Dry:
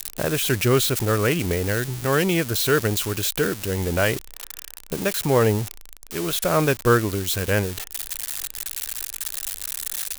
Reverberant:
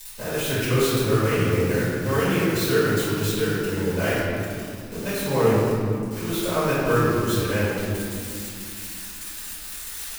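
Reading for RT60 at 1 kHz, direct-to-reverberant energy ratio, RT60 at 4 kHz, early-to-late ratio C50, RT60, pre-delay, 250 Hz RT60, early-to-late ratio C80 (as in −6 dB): 2.2 s, −12.0 dB, 1.3 s, −3.0 dB, 2.4 s, 4 ms, 3.9 s, −1.0 dB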